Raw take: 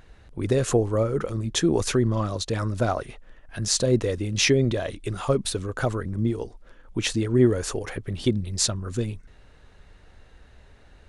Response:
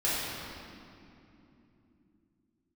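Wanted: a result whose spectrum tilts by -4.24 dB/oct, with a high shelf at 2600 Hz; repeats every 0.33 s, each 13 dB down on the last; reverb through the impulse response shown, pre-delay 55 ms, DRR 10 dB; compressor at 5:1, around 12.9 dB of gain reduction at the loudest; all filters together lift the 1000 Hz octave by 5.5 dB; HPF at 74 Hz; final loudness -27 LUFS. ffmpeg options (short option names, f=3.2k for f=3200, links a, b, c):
-filter_complex "[0:a]highpass=74,equalizer=f=1k:t=o:g=7,highshelf=f=2.6k:g=3,acompressor=threshold=-29dB:ratio=5,aecho=1:1:330|660|990:0.224|0.0493|0.0108,asplit=2[a][b];[1:a]atrim=start_sample=2205,adelay=55[c];[b][c]afir=irnorm=-1:irlink=0,volume=-21dB[d];[a][d]amix=inputs=2:normalize=0,volume=5.5dB"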